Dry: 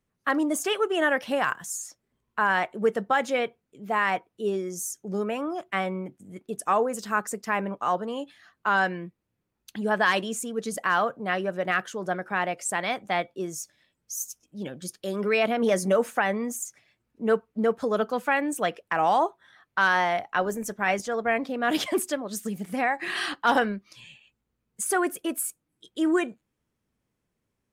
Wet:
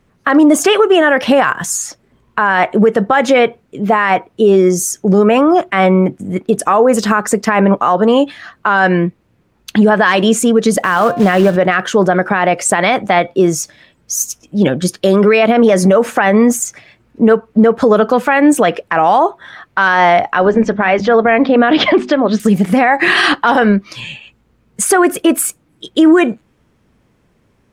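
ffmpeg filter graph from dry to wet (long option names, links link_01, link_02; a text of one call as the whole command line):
ffmpeg -i in.wav -filter_complex "[0:a]asettb=1/sr,asplit=3[link_01][link_02][link_03];[link_01]atrim=end=10.804[link_04];[link_02]atrim=start=10.8:end=11.56,asetpts=PTS-STARTPTS,afade=type=in:duration=0.004:curve=qsin,afade=type=out:start_time=0.756:duration=0.004:curve=qsin,equalizer=frequency=110:width=0.5:gain=5,acrusher=bits=4:mode=log:mix=0:aa=0.000001,bandreject=frequency=351.3:width_type=h:width=4,bandreject=frequency=702.6:width_type=h:width=4,bandreject=frequency=1053.9:width_type=h:width=4,bandreject=frequency=1405.2:width_type=h:width=4,bandreject=frequency=1756.5:width_type=h:width=4,bandreject=frequency=2107.8:width_type=h:width=4,bandreject=frequency=2459.1:width_type=h:width=4,bandreject=frequency=2810.4:width_type=h:width=4,bandreject=frequency=3161.7:width_type=h:width=4,bandreject=frequency=3513:width_type=h:width=4,bandreject=frequency=3864.3:width_type=h:width=4,bandreject=frequency=4215.6:width_type=h:width=4[link_05];[link_03]atrim=start=11.556[link_06];[link_04][link_05]acrossfade=duration=0.004:curve1=hsin:curve2=qsin[link_07];[link_07][link_06]acrossfade=duration=0.004:curve1=qsin:curve2=hsin,asettb=1/sr,asplit=3[link_08][link_09][link_10];[link_08]atrim=end=20.464[link_11];[link_09]atrim=start=20.46:end=22.4,asetpts=PTS-STARTPTS,afade=type=in:duration=0.004:curve=qsin,afade=type=out:start_time=1.936:duration=0.004:curve=qsin,lowpass=frequency=4300:width=0.5412,lowpass=frequency=4300:width=1.3066,bandreject=frequency=50:width_type=h:width=6,bandreject=frequency=100:width_type=h:width=6,bandreject=frequency=150:width_type=h:width=6,bandreject=frequency=200:width_type=h:width=6,bandreject=frequency=250:width_type=h:width=6[link_12];[link_10]atrim=start=22.396[link_13];[link_11][link_12]acrossfade=duration=0.004:curve1=hsin:curve2=qsin[link_14];[link_14][link_13]acrossfade=duration=0.004:curve1=qsin:curve2=hsin,lowpass=frequency=2900:poles=1,acompressor=threshold=-25dB:ratio=6,alimiter=level_in=24.5dB:limit=-1dB:release=50:level=0:latency=1,volume=-1dB" out.wav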